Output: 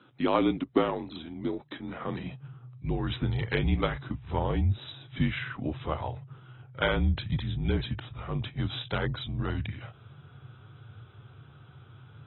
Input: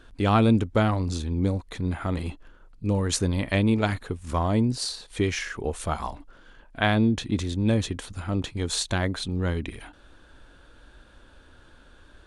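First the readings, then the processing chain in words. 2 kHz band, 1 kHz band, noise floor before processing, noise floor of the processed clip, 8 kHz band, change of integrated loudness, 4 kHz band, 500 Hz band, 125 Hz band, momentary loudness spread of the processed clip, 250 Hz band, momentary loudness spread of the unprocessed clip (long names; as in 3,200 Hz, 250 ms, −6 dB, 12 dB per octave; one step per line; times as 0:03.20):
−4.0 dB, −4.5 dB, −54 dBFS, −54 dBFS, below −40 dB, −5.0 dB, −5.5 dB, −3.5 dB, −4.5 dB, 22 LU, −6.5 dB, 11 LU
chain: frequency shifter −150 Hz
high-pass filter sweep 270 Hz → 100 Hz, 0:01.78–0:02.78
level −4 dB
AAC 16 kbit/s 24,000 Hz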